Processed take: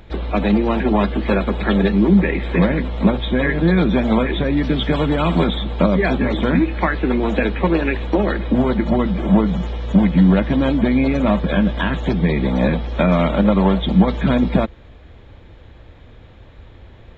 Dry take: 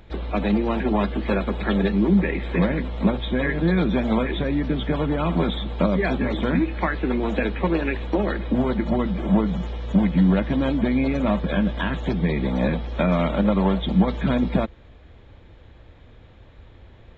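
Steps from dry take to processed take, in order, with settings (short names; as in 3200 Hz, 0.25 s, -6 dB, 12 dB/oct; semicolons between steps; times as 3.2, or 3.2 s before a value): 4.57–5.44 high shelf 3800 Hz +11.5 dB; gain +5 dB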